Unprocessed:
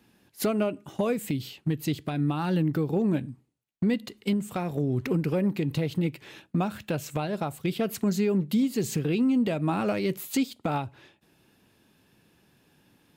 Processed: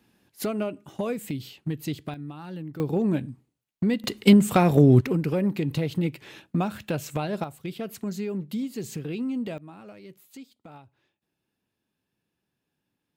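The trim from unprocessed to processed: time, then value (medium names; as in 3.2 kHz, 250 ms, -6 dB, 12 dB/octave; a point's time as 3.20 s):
-2.5 dB
from 2.14 s -11.5 dB
from 2.80 s +1 dB
from 4.04 s +11.5 dB
from 5.01 s +1 dB
from 7.44 s -6 dB
from 9.58 s -18.5 dB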